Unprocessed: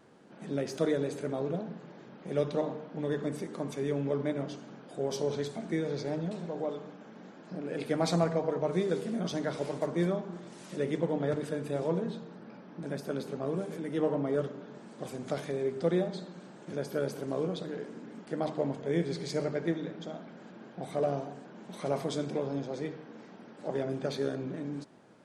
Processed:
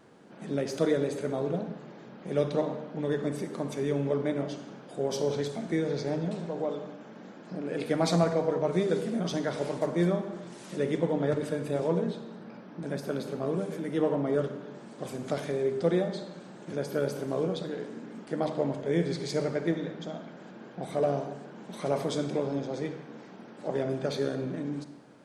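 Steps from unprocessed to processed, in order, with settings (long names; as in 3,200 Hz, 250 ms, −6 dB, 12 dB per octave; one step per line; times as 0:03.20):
four-comb reverb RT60 0.94 s, combs from 31 ms, DRR 11 dB
level +2.5 dB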